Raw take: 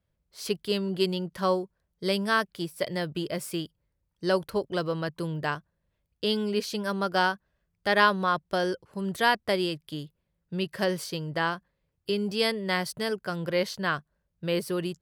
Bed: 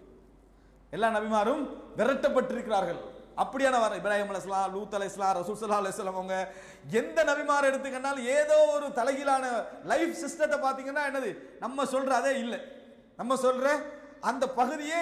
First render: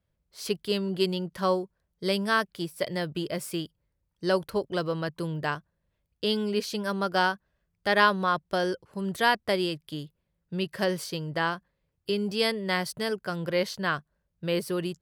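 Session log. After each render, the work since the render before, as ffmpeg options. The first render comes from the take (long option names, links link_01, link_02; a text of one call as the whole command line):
ffmpeg -i in.wav -af anull out.wav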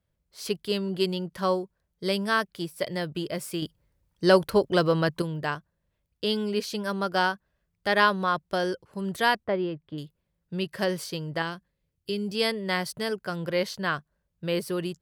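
ffmpeg -i in.wav -filter_complex "[0:a]asettb=1/sr,asplit=3[link_01][link_02][link_03];[link_01]atrim=end=3.624[link_04];[link_02]atrim=start=3.62:end=5.22,asetpts=PTS-STARTPTS,afade=type=in:duration=0.004:curve=qsin,afade=type=out:start_time=1.596:duration=0.004:curve=qsin,acontrast=74[link_05];[link_03]atrim=start=5.216[link_06];[link_04][link_05]acrossfade=duration=0.004:curve1=hsin:curve2=qsin[link_07];[link_07][link_06]acrossfade=duration=0.004:curve1=qsin:curve2=hsin,asettb=1/sr,asplit=3[link_08][link_09][link_10];[link_08]atrim=end=9.444[link_11];[link_09]atrim=start=9.44:end=9.98,asetpts=PTS-STARTPTS,afade=type=in:duration=0.004:curve=qsin,afade=type=out:start_time=0.536:duration=0.004:curve=qsin,lowpass=1500[link_12];[link_10]atrim=start=9.976[link_13];[link_11][link_12]acrossfade=duration=0.004:curve1=hsin:curve2=qsin[link_14];[link_14][link_13]acrossfade=duration=0.004:curve1=qsin:curve2=hsin,asettb=1/sr,asplit=3[link_15][link_16][link_17];[link_15]atrim=end=11.424[link_18];[link_16]atrim=start=11.42:end=12.35,asetpts=PTS-STARTPTS,afade=type=in:duration=0.004:curve=qsin,afade=type=out:start_time=0.926:duration=0.004:curve=qsin,equalizer=frequency=1000:width=0.6:gain=-7.5[link_19];[link_17]atrim=start=12.346[link_20];[link_18][link_19]acrossfade=duration=0.004:curve1=hsin:curve2=qsin[link_21];[link_21][link_20]acrossfade=duration=0.004:curve1=qsin:curve2=hsin" out.wav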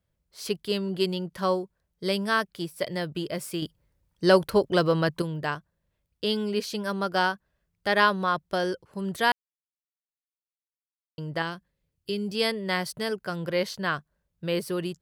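ffmpeg -i in.wav -filter_complex "[0:a]asplit=3[link_01][link_02][link_03];[link_01]atrim=end=9.32,asetpts=PTS-STARTPTS,afade=type=out:start_time=9.316:duration=0.004:curve=hsin[link_04];[link_02]atrim=start=9.32:end=11.18,asetpts=PTS-STARTPTS,volume=0[link_05];[link_03]atrim=start=11.18,asetpts=PTS-STARTPTS,afade=type=in:duration=0.004:curve=hsin[link_06];[link_04][link_05][link_06]concat=n=3:v=0:a=1" out.wav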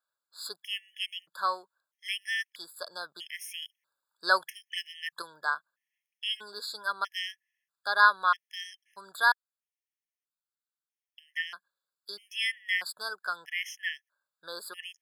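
ffmpeg -i in.wav -af "highpass=frequency=1300:width_type=q:width=1.6,afftfilt=real='re*gt(sin(2*PI*0.78*pts/sr)*(1-2*mod(floor(b*sr/1024/1700),2)),0)':imag='im*gt(sin(2*PI*0.78*pts/sr)*(1-2*mod(floor(b*sr/1024/1700),2)),0)':win_size=1024:overlap=0.75" out.wav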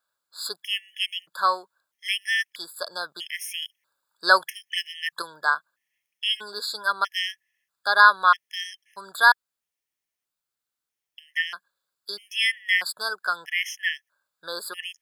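ffmpeg -i in.wav -af "volume=7.5dB,alimiter=limit=-2dB:level=0:latency=1" out.wav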